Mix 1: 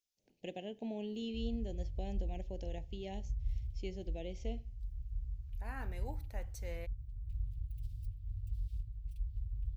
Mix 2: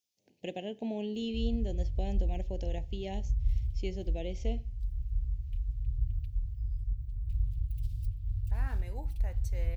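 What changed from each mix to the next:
first voice +5.5 dB; second voice: entry +2.90 s; background +8.0 dB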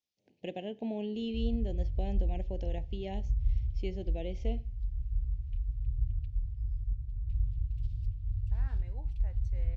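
second voice -7.5 dB; master: add distance through air 140 m

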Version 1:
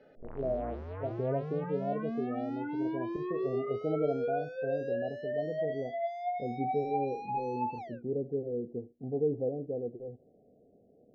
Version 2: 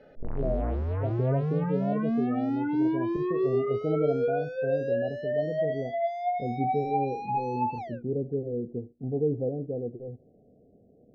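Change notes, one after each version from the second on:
background +4.5 dB; master: add bass shelf 230 Hz +10.5 dB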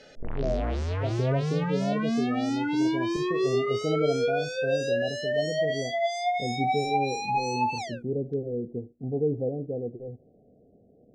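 master: remove Bessel low-pass 1 kHz, order 2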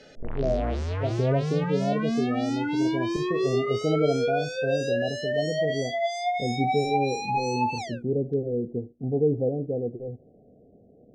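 speech +3.5 dB

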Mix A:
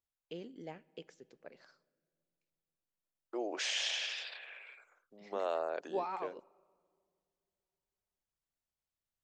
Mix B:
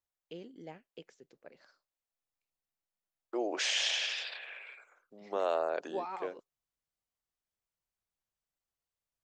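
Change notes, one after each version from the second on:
second voice +4.0 dB; reverb: off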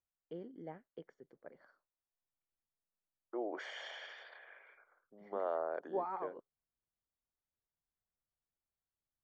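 second voice -5.5 dB; master: add Savitzky-Golay filter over 41 samples

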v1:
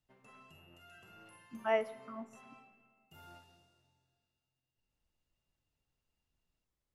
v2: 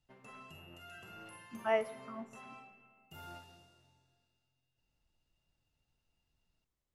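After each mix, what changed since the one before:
background +6.0 dB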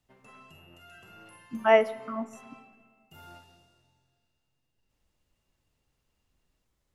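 speech +11.5 dB

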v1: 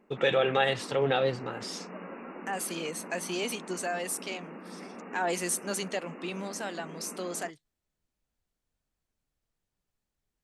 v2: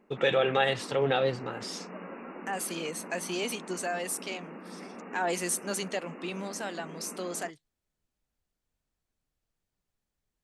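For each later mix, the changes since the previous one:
no change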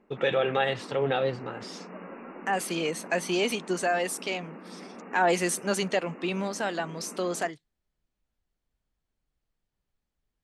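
second voice +7.0 dB; master: add treble shelf 6.4 kHz -11.5 dB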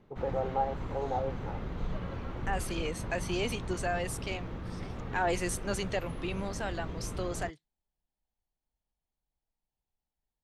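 first voice: add four-pole ladder low-pass 950 Hz, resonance 65%; second voice -6.5 dB; background: remove brick-wall FIR band-pass 180–2900 Hz

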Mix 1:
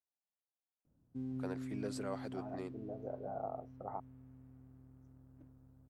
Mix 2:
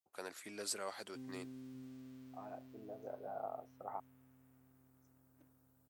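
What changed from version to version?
first voice: entry -1.25 s; master: add tilt EQ +4 dB/octave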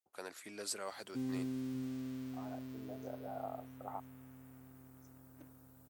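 background +11.0 dB

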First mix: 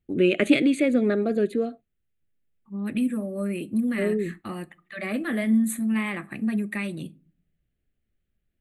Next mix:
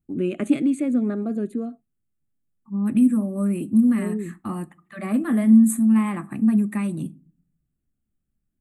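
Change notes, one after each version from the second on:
first voice -6.5 dB; master: add ten-band graphic EQ 125 Hz +5 dB, 250 Hz +8 dB, 500 Hz -6 dB, 1 kHz +9 dB, 2 kHz -7 dB, 4 kHz -9 dB, 8 kHz +7 dB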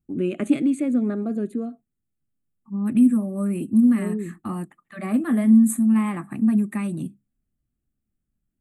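reverb: off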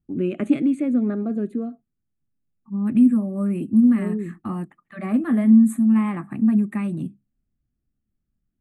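master: add tone controls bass +2 dB, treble -10 dB

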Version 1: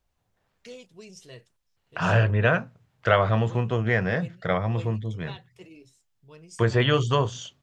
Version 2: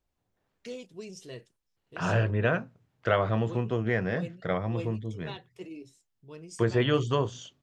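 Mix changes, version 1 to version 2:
second voice -6.5 dB; master: add peaking EQ 310 Hz +7 dB 1.2 oct

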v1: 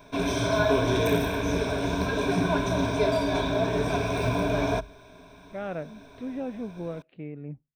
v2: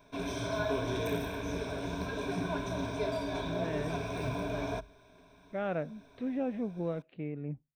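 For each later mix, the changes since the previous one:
background -9.5 dB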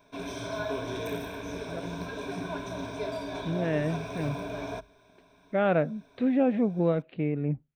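speech +9.5 dB; background: add bass shelf 110 Hz -7 dB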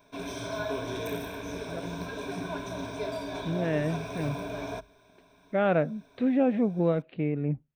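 background: add treble shelf 8.3 kHz +5 dB

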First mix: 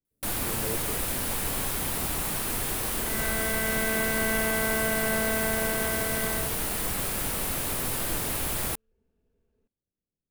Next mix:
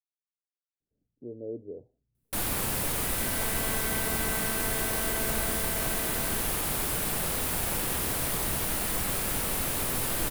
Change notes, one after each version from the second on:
speech: entry +0.80 s; first sound: entry +2.10 s; second sound -8.5 dB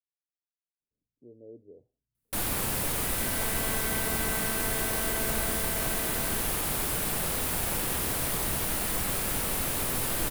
speech -10.5 dB

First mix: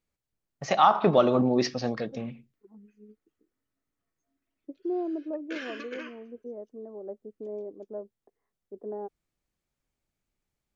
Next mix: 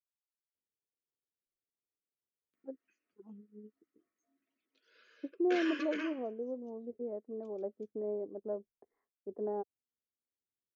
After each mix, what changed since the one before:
first voice: muted; second voice: entry +0.55 s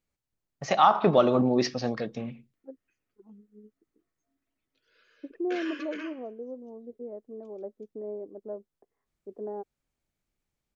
first voice: unmuted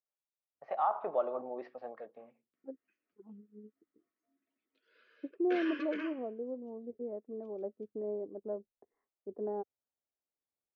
first voice: add ladder band-pass 800 Hz, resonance 30%; master: add distance through air 220 m

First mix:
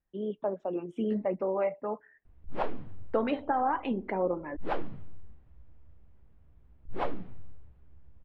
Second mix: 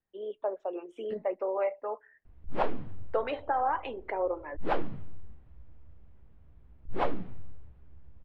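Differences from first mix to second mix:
first voice: add high-pass 390 Hz 24 dB/octave; background +3.0 dB

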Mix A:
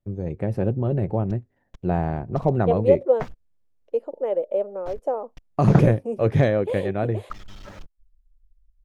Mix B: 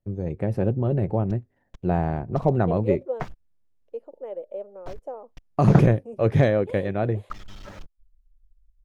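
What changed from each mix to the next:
second voice -10.5 dB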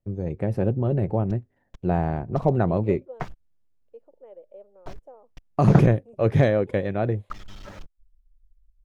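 second voice -11.5 dB

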